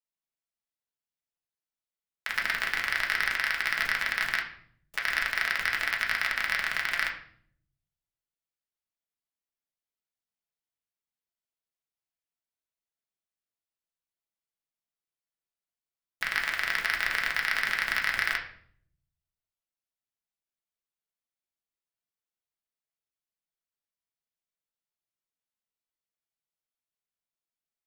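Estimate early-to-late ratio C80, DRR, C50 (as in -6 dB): 12.5 dB, -0.5 dB, 9.0 dB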